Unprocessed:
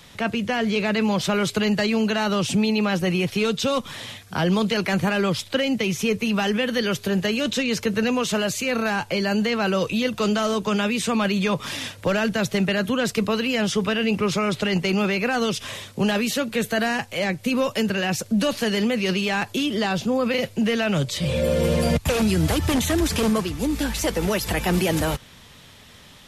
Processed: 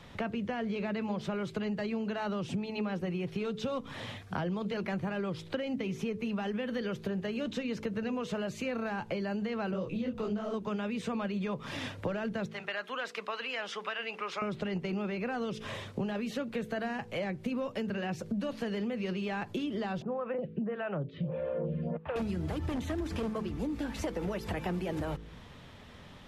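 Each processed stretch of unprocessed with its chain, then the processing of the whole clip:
0:09.71–0:10.54: low-shelf EQ 490 Hz +8.5 dB + upward compression, threshold −20 dBFS + micro pitch shift up and down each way 54 cents
0:12.46–0:14.42: high-pass filter 1,000 Hz + high-shelf EQ 6,800 Hz −10 dB
0:20.02–0:22.16: loudspeaker in its box 150–2,600 Hz, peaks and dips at 160 Hz +8 dB, 250 Hz −3 dB, 2,200 Hz −7 dB + phaser with staggered stages 1.6 Hz
whole clip: low-pass filter 1,200 Hz 6 dB per octave; hum removal 54.19 Hz, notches 9; downward compressor 6 to 1, threshold −32 dBFS

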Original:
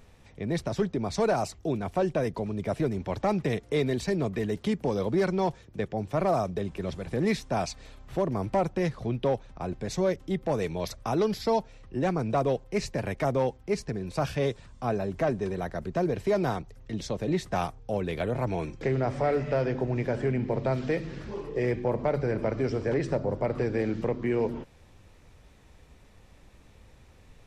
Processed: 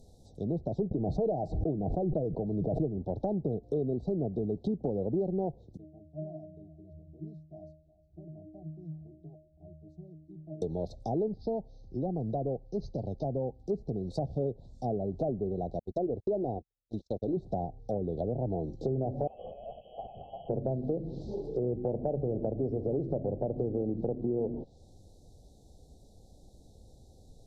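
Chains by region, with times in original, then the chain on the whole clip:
0:00.91–0:02.97: comb filter 6.4 ms, depth 37% + background raised ahead of every attack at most 30 dB per second
0:05.77–0:10.62: parametric band 1,700 Hz −14 dB 1.2 octaves + resonances in every octave D#, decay 0.49 s + single-tap delay 360 ms −18.5 dB
0:11.28–0:13.58: Chebyshev low-pass with heavy ripple 6,500 Hz, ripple 6 dB + low-shelf EQ 210 Hz +6 dB
0:15.79–0:17.37: noise gate −34 dBFS, range −45 dB + parametric band 160 Hz −14 dB 0.36 octaves
0:19.27–0:20.49: voice inversion scrambler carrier 3,100 Hz + comb filter 1.6 ms, depth 69% + envelope flattener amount 100%
whole clip: treble cut that deepens with the level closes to 790 Hz, closed at −25 dBFS; Chebyshev band-stop filter 770–3,900 Hz, order 4; downward compressor 2.5 to 1, threshold −28 dBFS

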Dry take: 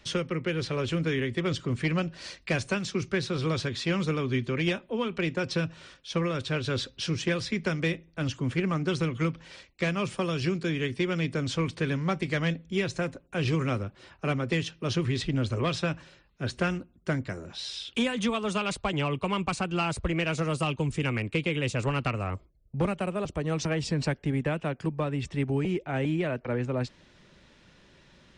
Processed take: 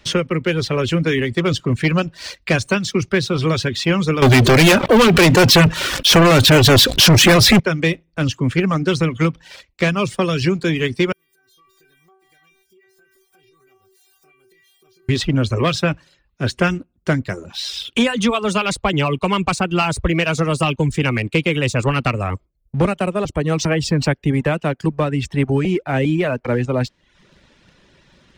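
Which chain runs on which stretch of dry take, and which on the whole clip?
0:04.22–0:07.60: leveller curve on the samples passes 5 + background raised ahead of every attack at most 58 dB per second
0:11.12–0:15.09: spike at every zero crossing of −32.5 dBFS + stiff-string resonator 380 Hz, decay 0.52 s, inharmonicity 0.002 + downward compressor 10 to 1, threshold −57 dBFS
whole clip: leveller curve on the samples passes 1; reverb reduction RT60 0.54 s; level +7.5 dB

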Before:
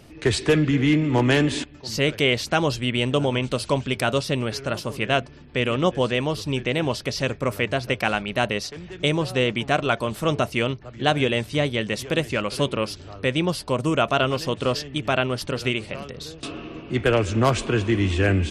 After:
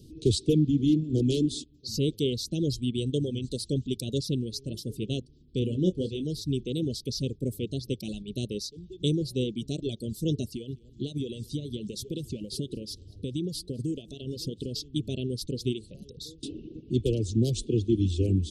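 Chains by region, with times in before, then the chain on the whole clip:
0:05.59–0:06.25: high-shelf EQ 4,400 Hz −8 dB + double-tracking delay 27 ms −7 dB
0:10.47–0:14.84: downward compressor 8 to 1, threshold −23 dBFS + repeating echo 205 ms, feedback 26%, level −15.5 dB
whole clip: elliptic band-stop filter 460–3,600 Hz, stop band 50 dB; reverb reduction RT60 1.7 s; drawn EQ curve 330 Hz 0 dB, 590 Hz −10 dB, 3,900 Hz −3 dB

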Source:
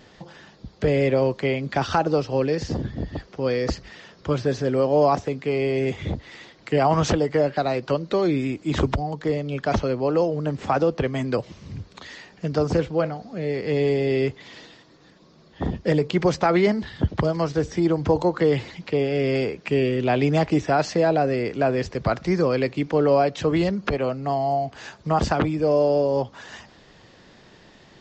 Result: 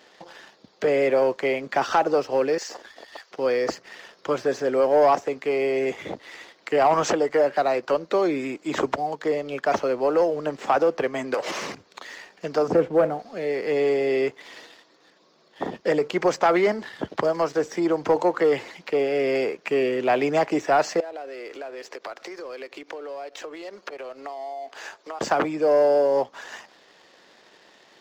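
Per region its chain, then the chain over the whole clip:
0:02.58–0:03.31: high-pass filter 890 Hz + high-shelf EQ 5,500 Hz +8.5 dB
0:11.34–0:11.75: downward compressor 16 to 1, threshold −37 dBFS + mid-hump overdrive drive 31 dB, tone 5,500 Hz, clips at −17 dBFS
0:12.68–0:13.19: high-pass filter 150 Hz 6 dB per octave + spectral tilt −4 dB per octave
0:21.00–0:25.21: high-pass filter 300 Hz 24 dB per octave + downward compressor 20 to 1, threshold −33 dBFS
whole clip: high-pass filter 420 Hz 12 dB per octave; dynamic equaliser 3,800 Hz, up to −8 dB, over −49 dBFS, Q 1.3; leveller curve on the samples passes 1

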